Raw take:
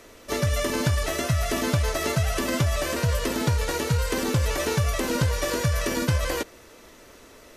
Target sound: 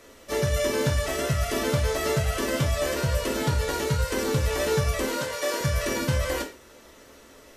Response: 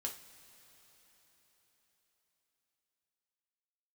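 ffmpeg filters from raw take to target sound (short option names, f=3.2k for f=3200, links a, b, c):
-filter_complex "[0:a]asettb=1/sr,asplit=3[a][b][c];[a]atrim=end=5.064[d];[b]atrim=start=5.06:end=5.61,asetpts=PTS-STARTPTS,afade=t=in:d=0.004:c=qsin,afade=t=out:st=0.546:d=0.004:c=qsin,highpass=320[e];[c]atrim=start=5.606[f];[d][e]acrossfade=d=0.004:c1=hsin:c2=qsin[g];[g][f]acrossfade=d=0.004:c1=qsin:c2=hsin[h];[1:a]atrim=start_sample=2205,atrim=end_sample=6174[i];[h][i]afir=irnorm=-1:irlink=0"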